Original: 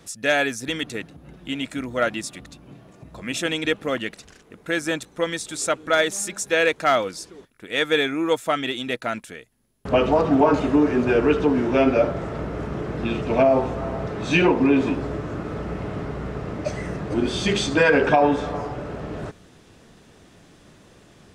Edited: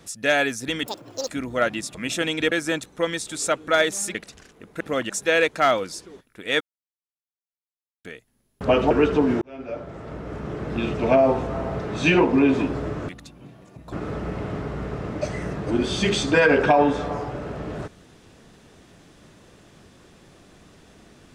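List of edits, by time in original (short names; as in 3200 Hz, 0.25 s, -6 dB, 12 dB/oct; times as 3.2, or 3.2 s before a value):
0.86–1.69 speed 195%
2.35–3.19 move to 15.36
3.76–4.05 swap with 4.71–6.34
7.85–9.29 mute
10.15–11.18 cut
11.69–13.15 fade in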